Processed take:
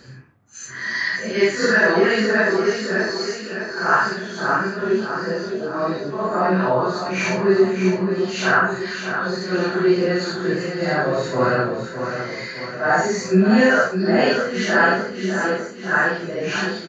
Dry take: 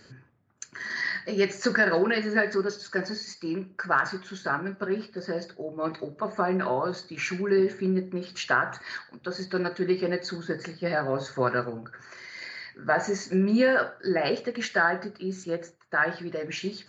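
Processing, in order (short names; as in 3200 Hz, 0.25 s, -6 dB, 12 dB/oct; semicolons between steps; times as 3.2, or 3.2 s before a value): phase scrambler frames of 0.2 s; 3.1–3.73 HPF 1200 Hz; feedback echo 0.608 s, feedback 51%, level -8 dB; gain +7.5 dB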